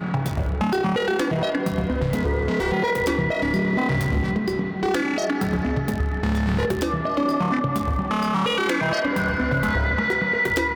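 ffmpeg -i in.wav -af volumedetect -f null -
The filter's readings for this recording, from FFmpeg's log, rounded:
mean_volume: -22.4 dB
max_volume: -11.8 dB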